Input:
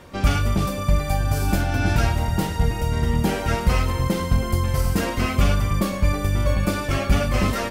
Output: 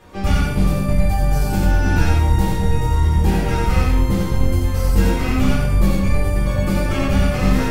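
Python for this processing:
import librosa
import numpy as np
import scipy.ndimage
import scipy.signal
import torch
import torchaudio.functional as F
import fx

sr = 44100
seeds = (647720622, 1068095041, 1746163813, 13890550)

y = x + 10.0 ** (-3.5 / 20.0) * np.pad(x, (int(89 * sr / 1000.0), 0))[:len(x)]
y = fx.room_shoebox(y, sr, seeds[0], volume_m3=410.0, walls='furnished', distance_m=3.9)
y = F.gain(torch.from_numpy(y), -6.5).numpy()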